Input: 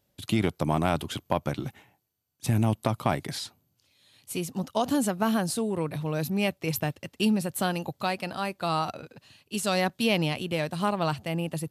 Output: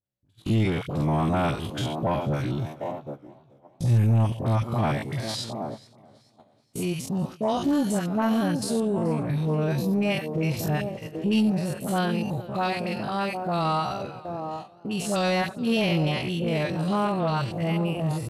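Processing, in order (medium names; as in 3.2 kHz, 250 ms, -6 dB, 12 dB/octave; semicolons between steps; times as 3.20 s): spectrogram pixelated in time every 50 ms; peaking EQ 120 Hz +8.5 dB 0.34 oct; phase dispersion highs, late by 48 ms, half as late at 1.1 kHz; saturation -16.5 dBFS, distortion -18 dB; on a send: feedback echo behind a band-pass 490 ms, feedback 40%, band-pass 420 Hz, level -7.5 dB; on the sum: tempo 0.64×; gate -41 dBFS, range -25 dB; treble shelf 9.7 kHz -9.5 dB; in parallel at +1 dB: peak limiter -28.5 dBFS, peak gain reduction 12 dB; on the sum: modulated delay 430 ms, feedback 34%, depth 83 cents, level -21.5 dB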